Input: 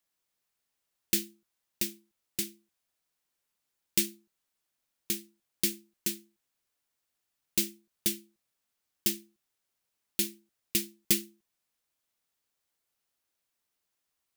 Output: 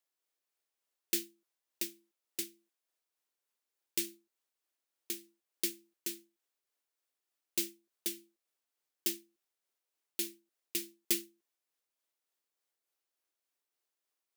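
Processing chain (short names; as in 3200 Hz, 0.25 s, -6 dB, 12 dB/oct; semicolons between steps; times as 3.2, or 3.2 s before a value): tremolo 3.4 Hz, depth 29%; resonant low shelf 240 Hz -12 dB, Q 1.5; gain -4.5 dB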